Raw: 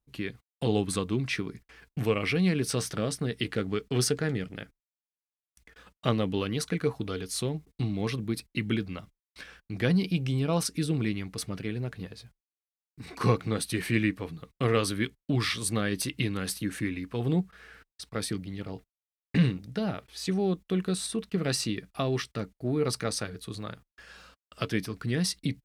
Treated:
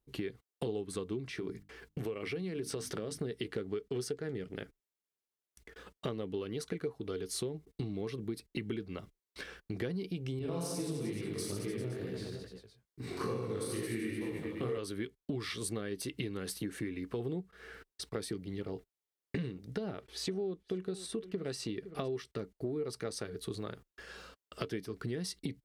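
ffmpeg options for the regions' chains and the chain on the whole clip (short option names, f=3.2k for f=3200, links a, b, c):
-filter_complex "[0:a]asettb=1/sr,asplit=3[a][b][c];[a]atrim=end=1.254[d];[b]atrim=start=1.25:end=3.18,asetpts=PTS-STARTPTS,afade=t=in:d=0.004:c=qsin,afade=t=out:st=1.926:d=0.004:c=qsin,bandreject=f=50:t=h:w=6,bandreject=f=100:t=h:w=6,bandreject=f=150:t=h:w=6,bandreject=f=200:t=h:w=6,bandreject=f=250:t=h:w=6,bandreject=f=300:t=h:w=6,acompressor=threshold=-32dB:ratio=3:attack=3.2:release=140:knee=1:detection=peak[e];[c]atrim=start=3.176[f];[d][e]acrossfade=d=0.004:c1=hsin:c2=qsin[g];[g][f]acrossfade=d=0.004:c1=qsin:c2=hsin,asettb=1/sr,asplit=3[h][i][j];[h]atrim=end=10.394[k];[i]atrim=start=10.39:end=14.78,asetpts=PTS-STARTPTS,afade=t=in:d=0.004:c=qsin,afade=t=out:st=4.386:d=0.004:c=qsin,aecho=1:1:40|88|145.6|214.7|297.7|397.2|516.6:0.794|0.631|0.501|0.398|0.316|0.251|0.2,atrim=end_sample=193599,flanger=delay=15.5:depth=7.1:speed=2.3,adynamicequalizer=threshold=0.00447:dfrequency=5600:dqfactor=0.7:tfrequency=5600:tqfactor=0.7:attack=5:release=100:ratio=0.375:range=2.5:mode=boostabove:tftype=highshelf[l];[j]atrim=start=14.776[m];[k][l]acrossfade=d=0.004:c1=hsin:c2=qsin[n];[n][m]acrossfade=d=0.004:c1=qsin:c2=hsin,asettb=1/sr,asplit=3[o][p][q];[o]atrim=end=19.774[r];[p]atrim=start=19.77:end=22.08,asetpts=PTS-STARTPTS,afade=t=in:d=0.004:c=qsin,afade=t=out:st=2.306:d=0.004:c=qsin,highshelf=f=9.5k:g=-6.5,aecho=1:1:512:0.1,atrim=end_sample=101871[s];[q]atrim=start=22.076[t];[r][s]acrossfade=d=0.004:c1=hsin:c2=qsin[u];[u][t]acrossfade=d=0.004:c1=qsin:c2=hsin,equalizer=f=400:w=2.2:g=10.5,bandreject=f=2.5k:w=20,acompressor=threshold=-35dB:ratio=6"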